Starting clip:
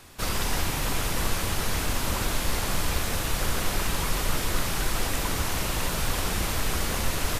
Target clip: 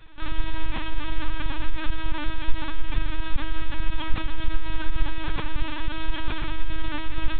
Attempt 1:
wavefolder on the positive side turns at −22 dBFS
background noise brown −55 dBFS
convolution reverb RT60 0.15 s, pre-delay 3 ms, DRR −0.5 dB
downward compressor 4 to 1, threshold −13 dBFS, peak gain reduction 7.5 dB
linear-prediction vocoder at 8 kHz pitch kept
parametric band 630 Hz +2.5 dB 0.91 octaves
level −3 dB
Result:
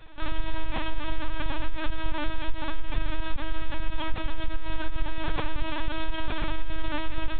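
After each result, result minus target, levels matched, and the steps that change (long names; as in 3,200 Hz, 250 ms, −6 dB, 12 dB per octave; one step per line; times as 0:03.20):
downward compressor: peak gain reduction +7.5 dB; 500 Hz band +5.0 dB
remove: downward compressor 4 to 1, threshold −13 dBFS, peak gain reduction 7.5 dB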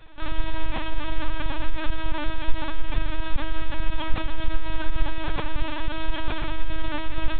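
500 Hz band +5.0 dB
change: parametric band 630 Hz −4.5 dB 0.91 octaves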